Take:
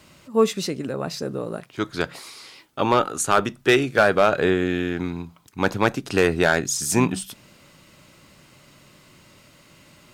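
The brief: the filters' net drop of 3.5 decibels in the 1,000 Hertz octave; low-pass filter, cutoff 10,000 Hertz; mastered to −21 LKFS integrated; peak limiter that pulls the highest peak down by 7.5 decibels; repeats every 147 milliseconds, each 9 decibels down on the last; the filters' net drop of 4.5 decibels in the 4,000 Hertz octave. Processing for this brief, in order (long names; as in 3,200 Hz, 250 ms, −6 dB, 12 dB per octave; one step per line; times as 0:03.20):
low-pass filter 10,000 Hz
parametric band 1,000 Hz −4.5 dB
parametric band 4,000 Hz −5.5 dB
brickwall limiter −14.5 dBFS
repeating echo 147 ms, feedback 35%, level −9 dB
level +6 dB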